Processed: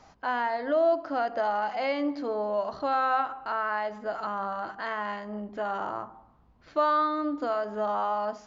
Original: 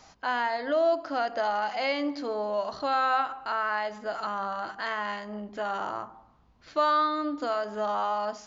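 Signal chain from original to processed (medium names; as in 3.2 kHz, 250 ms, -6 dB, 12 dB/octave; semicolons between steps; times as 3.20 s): treble shelf 2.5 kHz -11.5 dB; trim +1.5 dB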